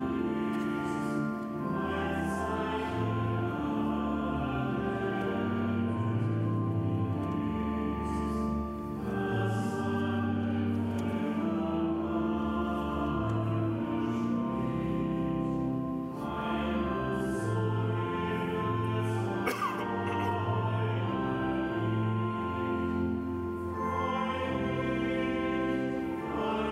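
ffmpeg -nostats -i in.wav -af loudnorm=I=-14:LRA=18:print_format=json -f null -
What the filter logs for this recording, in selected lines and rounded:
"input_i" : "-31.7",
"input_tp" : "-16.5",
"input_lra" : "0.8",
"input_thresh" : "-41.7",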